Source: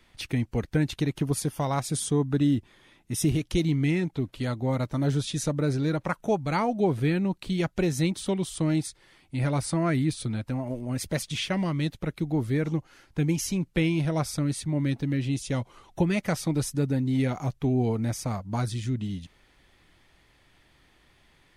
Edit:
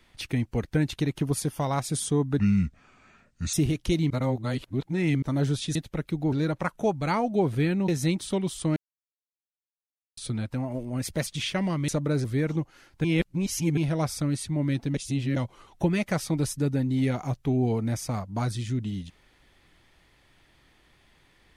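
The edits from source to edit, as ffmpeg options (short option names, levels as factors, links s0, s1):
-filter_complex "[0:a]asplit=16[s0][s1][s2][s3][s4][s5][s6][s7][s8][s9][s10][s11][s12][s13][s14][s15];[s0]atrim=end=2.394[s16];[s1]atrim=start=2.39:end=3.19,asetpts=PTS-STARTPTS,asetrate=30870,aresample=44100[s17];[s2]atrim=start=3.186:end=3.762[s18];[s3]atrim=start=3.758:end=4.882,asetpts=PTS-STARTPTS,areverse[s19];[s4]atrim=start=4.878:end=5.412[s20];[s5]atrim=start=11.838:end=12.412[s21];[s6]atrim=start=5.768:end=7.332[s22];[s7]atrim=start=7.838:end=8.72,asetpts=PTS-STARTPTS,afade=t=out:st=0.878:d=0.004:c=hsin[s23];[s8]atrim=start=8.72:end=10.13,asetpts=PTS-STARTPTS,volume=0[s24];[s9]atrim=start=10.13:end=11.842,asetpts=PTS-STARTPTS,afade=t=in:d=0.004:c=hsin[s25];[s10]atrim=start=5.408:end=5.772[s26];[s11]atrim=start=12.408:end=13.212[s27];[s12]atrim=start=13.208:end=13.942,asetpts=PTS-STARTPTS,areverse[s28];[s13]atrim=start=13.938:end=15.112[s29];[s14]atrim=start=15.108:end=15.532,asetpts=PTS-STARTPTS,areverse[s30];[s15]atrim=start=15.528[s31];[s16][s17]acrossfade=d=0.004:c1=hsin:c2=hsin[s32];[s32][s18]acrossfade=d=0.004:c1=hsin:c2=hsin[s33];[s33][s19]acrossfade=d=0.004:c1=hsin:c2=hsin[s34];[s34][s20]acrossfade=d=0.004:c1=hsin:c2=hsin[s35];[s35][s21]acrossfade=d=0.004:c1=hsin:c2=hsin[s36];[s36][s22]acrossfade=d=0.004:c1=hsin:c2=hsin[s37];[s23][s24][s25]concat=n=3:v=0:a=1[s38];[s37][s38]acrossfade=d=0.004:c1=hsin:c2=hsin[s39];[s39][s26]acrossfade=d=0.004:c1=hsin:c2=hsin[s40];[s40][s27]acrossfade=d=0.004:c1=hsin:c2=hsin[s41];[s41][s28]acrossfade=d=0.004:c1=hsin:c2=hsin[s42];[s42][s29]acrossfade=d=0.004:c1=hsin:c2=hsin[s43];[s43][s30]acrossfade=d=0.004:c1=hsin:c2=hsin[s44];[s44][s31]acrossfade=d=0.004:c1=hsin:c2=hsin"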